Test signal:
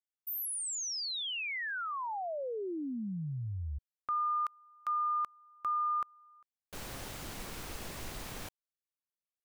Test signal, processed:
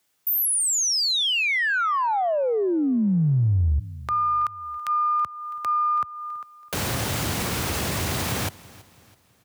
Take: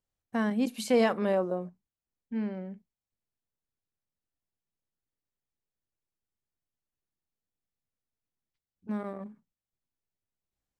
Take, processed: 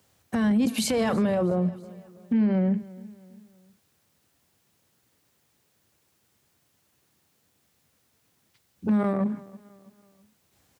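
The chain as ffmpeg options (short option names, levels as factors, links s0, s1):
-filter_complex "[0:a]apsyclip=18.8,aeval=exprs='1.06*(cos(1*acos(clip(val(0)/1.06,-1,1)))-cos(1*PI/2))+0.0106*(cos(4*acos(clip(val(0)/1.06,-1,1)))-cos(4*PI/2))':c=same,acrossover=split=150[s0][s1];[s1]acompressor=threshold=0.1:ratio=6:attack=1.9:release=398:knee=2.83:detection=peak[s2];[s0][s2]amix=inputs=2:normalize=0,highpass=f=76:w=0.5412,highpass=f=76:w=1.3066,aecho=1:1:328|656|984:0.0668|0.0287|0.0124,acompressor=threshold=0.126:ratio=6:attack=0.29:release=63:knee=6:detection=rms"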